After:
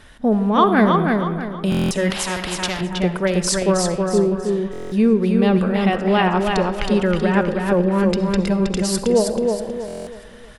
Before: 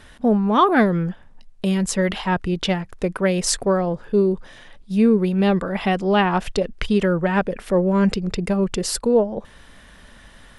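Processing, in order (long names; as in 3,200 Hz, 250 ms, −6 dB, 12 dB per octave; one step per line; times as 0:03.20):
repeating echo 319 ms, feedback 36%, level −4 dB
comb and all-pass reverb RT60 1.3 s, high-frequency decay 0.45×, pre-delay 25 ms, DRR 12 dB
buffer that repeats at 0:01.70/0:04.71/0:09.86, samples 1,024, times 8
0:02.10–0:02.81: every bin compressed towards the loudest bin 2 to 1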